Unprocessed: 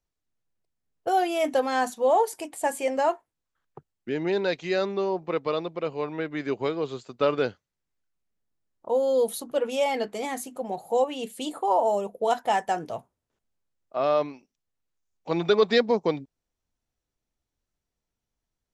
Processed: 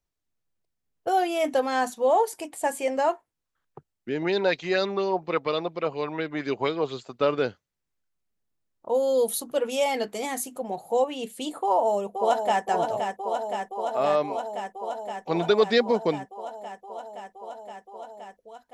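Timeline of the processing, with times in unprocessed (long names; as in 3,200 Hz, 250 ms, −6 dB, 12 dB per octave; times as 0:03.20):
0:04.22–0:07.18: auto-filter bell 4.2 Hz 650–4,900 Hz +10 dB
0:08.94–0:10.59: high-shelf EQ 4,900 Hz +7 dB
0:11.63–0:12.64: delay throw 520 ms, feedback 85%, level −6 dB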